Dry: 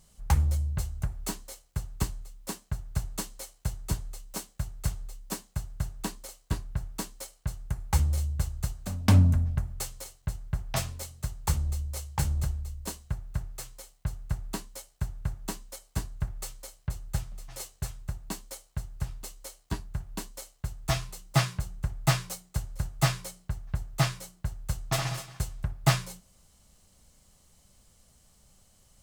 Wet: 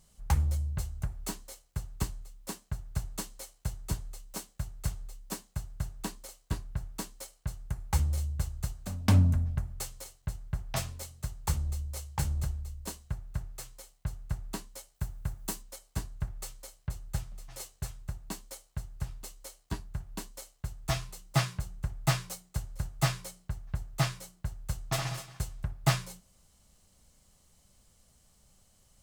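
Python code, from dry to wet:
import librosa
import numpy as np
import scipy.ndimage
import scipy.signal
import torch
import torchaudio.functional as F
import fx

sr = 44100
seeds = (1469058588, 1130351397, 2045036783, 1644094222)

y = fx.high_shelf(x, sr, hz=fx.line((14.94, 12000.0), (15.61, 6600.0)), db=9.5, at=(14.94, 15.61), fade=0.02)
y = y * 10.0 ** (-3.0 / 20.0)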